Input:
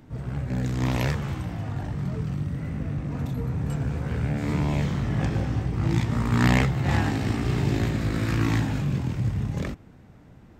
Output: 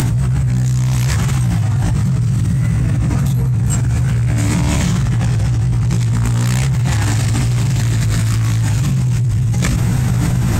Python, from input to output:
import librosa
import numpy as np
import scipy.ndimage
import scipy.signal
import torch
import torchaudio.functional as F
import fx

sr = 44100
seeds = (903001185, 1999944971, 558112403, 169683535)

y = fx.high_shelf(x, sr, hz=5500.0, db=7.5)
y = fx.doubler(y, sr, ms=17.0, db=-2.0)
y = 10.0 ** (-23.0 / 20.0) * np.tanh(y / 10.0 ** (-23.0 / 20.0))
y = fx.graphic_eq(y, sr, hz=(125, 250, 500, 8000), db=(10, -5, -6, 10))
y = fx.env_flatten(y, sr, amount_pct=100)
y = y * 10.0 ** (2.0 / 20.0)